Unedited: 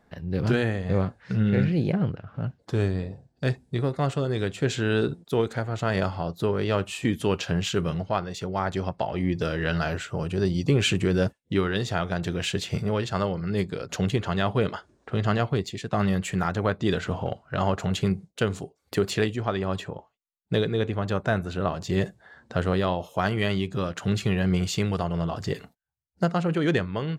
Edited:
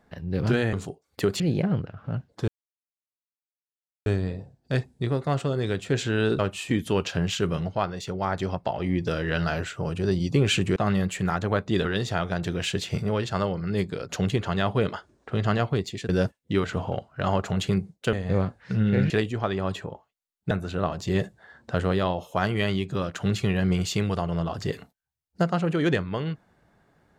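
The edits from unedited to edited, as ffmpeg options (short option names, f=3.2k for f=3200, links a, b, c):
-filter_complex "[0:a]asplit=12[a][b][c][d][e][f][g][h][i][j][k][l];[a]atrim=end=0.732[m];[b]atrim=start=18.468:end=19.142[n];[c]atrim=start=1.698:end=2.78,asetpts=PTS-STARTPTS,afade=t=out:st=1.078:d=0.004:c=hsin,apad=pad_dur=1.58[o];[d]atrim=start=2.78:end=5.112,asetpts=PTS-STARTPTS,afade=t=in:d=0.004:c=hsin[p];[e]atrim=start=6.728:end=11.102[q];[f]atrim=start=15.888:end=16.982[r];[g]atrim=start=11.648:end=15.892[s];[h]atrim=start=11.098:end=11.652[t];[i]atrim=start=16.978:end=18.472[u];[j]atrim=start=0.728:end=1.702[v];[k]atrim=start=19.138:end=20.552[w];[l]atrim=start=21.328[x];[m][n]acrossfade=d=0.004:c1=hsin:c2=hsin[y];[o][p]concat=n=2:v=0:a=1[z];[y][z]acrossfade=d=0.004:c1=hsin:c2=hsin[aa];[aa][q]acrossfade=d=0.004:c1=hsin:c2=hsin[ab];[ab][r]acrossfade=d=0.004:c1=hsin:c2=hsin[ac];[ac][s]acrossfade=d=0.004:c1=hsin:c2=hsin[ad];[ad][t]acrossfade=d=0.004:c1=hsin:c2=hsin[ae];[ae][u]acrossfade=d=0.004:c1=hsin:c2=hsin[af];[af][v]acrossfade=d=0.004:c1=hsin:c2=hsin[ag];[ag][w]acrossfade=d=0.004:c1=hsin:c2=hsin[ah];[ah][x]acrossfade=d=0.004:c1=hsin:c2=hsin"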